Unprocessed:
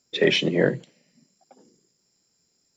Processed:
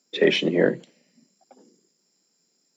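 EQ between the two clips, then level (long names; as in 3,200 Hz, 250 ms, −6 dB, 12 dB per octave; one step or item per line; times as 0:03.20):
dynamic equaliser 5,800 Hz, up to −4 dB, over −41 dBFS, Q 0.75
high-pass filter 190 Hz 24 dB per octave
low-shelf EQ 350 Hz +3.5 dB
0.0 dB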